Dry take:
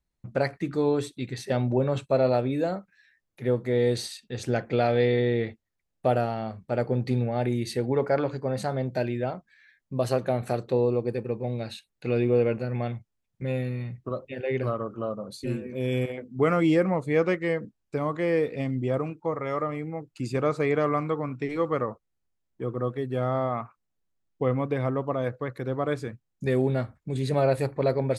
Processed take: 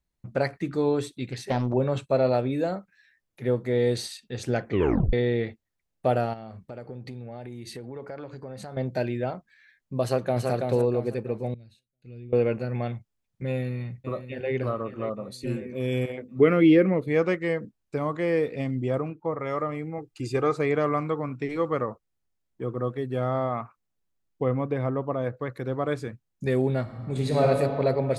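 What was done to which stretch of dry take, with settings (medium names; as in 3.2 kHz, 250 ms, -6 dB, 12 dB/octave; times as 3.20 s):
1.30–1.74 s: loudspeaker Doppler distortion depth 0.65 ms
4.69 s: tape stop 0.44 s
6.33–8.77 s: compression 5:1, threshold -36 dBFS
10.03–10.48 s: echo throw 330 ms, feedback 35%, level -3.5 dB
11.54–12.33 s: amplifier tone stack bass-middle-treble 10-0-1
13.48–14.53 s: echo throw 560 ms, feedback 50%, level -11.5 dB
16.40–17.08 s: FFT filter 150 Hz 0 dB, 230 Hz +5 dB, 440 Hz +6 dB, 820 Hz -9 dB, 2.1 kHz +4 dB, 3.7 kHz +2 dB, 7.6 kHz -19 dB, 12 kHz +1 dB
19.00–19.40 s: low-pass 2.2 kHz 6 dB/octave
19.98–20.56 s: comb 2.5 ms, depth 61%
24.44–25.37 s: treble shelf 2.4 kHz -7 dB
26.81–27.44 s: reverb throw, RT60 2.8 s, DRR -1 dB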